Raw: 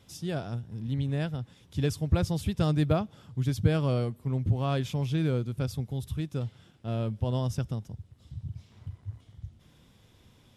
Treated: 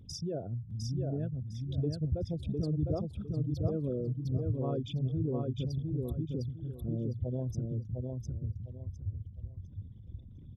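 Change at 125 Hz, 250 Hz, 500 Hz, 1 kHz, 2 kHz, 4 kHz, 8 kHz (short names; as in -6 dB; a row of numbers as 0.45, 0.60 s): -4.0 dB, -4.0 dB, -4.0 dB, -11.5 dB, under -20 dB, -8.0 dB, n/a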